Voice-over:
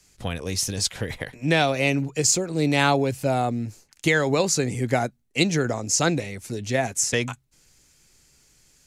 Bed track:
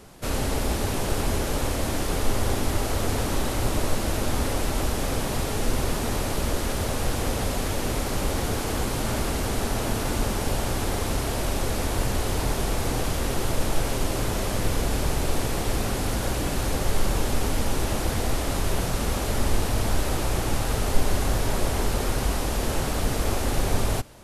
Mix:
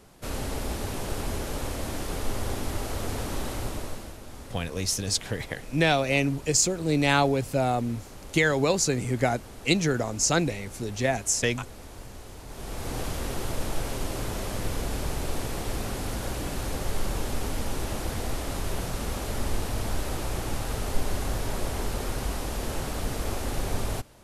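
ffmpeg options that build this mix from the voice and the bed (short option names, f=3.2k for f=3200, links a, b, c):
-filter_complex "[0:a]adelay=4300,volume=-2dB[a];[1:a]volume=6.5dB,afade=t=out:st=3.52:d=0.65:silence=0.251189,afade=t=in:st=12.47:d=0.54:silence=0.237137[b];[a][b]amix=inputs=2:normalize=0"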